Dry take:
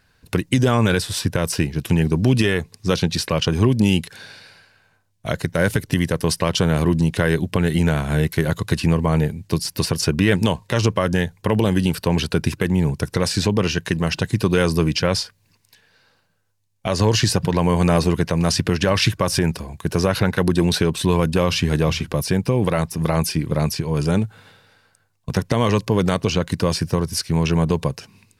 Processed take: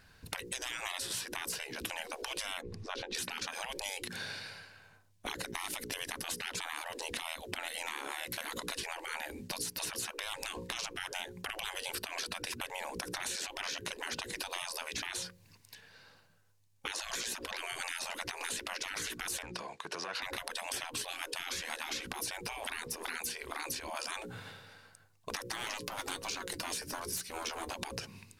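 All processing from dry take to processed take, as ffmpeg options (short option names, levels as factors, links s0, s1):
-filter_complex "[0:a]asettb=1/sr,asplit=3[s0][s1][s2];[s0]atrim=end=2.614[s3];[s1]atrim=start=2.61:end=3.15,asetpts=PTS-STARTPTS,afade=t=in:d=0.004:c=qsin,afade=t=out:st=0.536:d=0.004:c=qsin,aemphasis=mode=reproduction:type=riaa,acompressor=threshold=0.0282:ratio=1.5:attack=3.2:release=140:knee=1:detection=peak[s4];[s2]atrim=start=3.146[s5];[s3][s4]acrossfade=d=0.004:c1=hsin:c2=qsin[s6];[s6][s5]acrossfade=d=0.004:c1=qsin:c2=hsin,asettb=1/sr,asplit=3[s7][s8][s9];[s7]atrim=end=19.424[s10];[s8]atrim=start=19.42:end=20.22,asetpts=PTS-STARTPTS,afade=t=in:d=0.004:c=qsin,afade=t=out:st=0.796:d=0.004:c=qsin,acompressor=threshold=0.0562:ratio=4:attack=3.2:release=140:knee=1:detection=peak,asoftclip=type=hard:threshold=0.0891,highpass=650,lowpass=5800[s11];[s9]atrim=start=20.216[s12];[s10][s11]acrossfade=d=0.004:c1=hsin:c2=qsin[s13];[s13][s12]acrossfade=d=0.004:c1=qsin:c2=hsin,asettb=1/sr,asplit=3[s14][s15][s16];[s14]atrim=end=25.424[s17];[s15]atrim=start=25.42:end=27.74,asetpts=PTS-STARTPTS,afade=t=in:d=0.004:c=qsin,afade=t=out:st=2.316:d=0.004:c=qsin,highshelf=f=6700:g=9,asoftclip=type=hard:threshold=0.224,flanger=delay=5.1:depth=1.6:regen=53:speed=1.1:shape=sinusoidal[s18];[s16]atrim=start=27.736[s19];[s17][s18]acrossfade=d=0.004:c1=hsin:c2=qsin[s20];[s20][s19]acrossfade=d=0.004:c1=qsin:c2=hsin,bandreject=f=60:t=h:w=6,bandreject=f=120:t=h:w=6,bandreject=f=180:t=h:w=6,bandreject=f=240:t=h:w=6,bandreject=f=300:t=h:w=6,bandreject=f=360:t=h:w=6,bandreject=f=420:t=h:w=6,bandreject=f=480:t=h:w=6,bandreject=f=540:t=h:w=6,afftfilt=real='re*lt(hypot(re,im),0.1)':imag='im*lt(hypot(re,im),0.1)':win_size=1024:overlap=0.75,acompressor=threshold=0.0178:ratio=6"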